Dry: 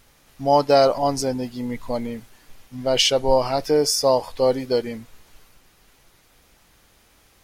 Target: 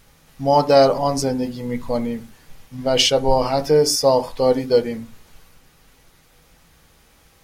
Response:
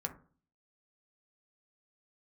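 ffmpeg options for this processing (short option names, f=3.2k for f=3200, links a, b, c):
-filter_complex "[0:a]asplit=2[a][b];[1:a]atrim=start_sample=2205,afade=t=out:st=0.17:d=0.01,atrim=end_sample=7938,lowshelf=f=200:g=5[c];[b][c]afir=irnorm=-1:irlink=0,volume=0.5dB[d];[a][d]amix=inputs=2:normalize=0,volume=-4dB"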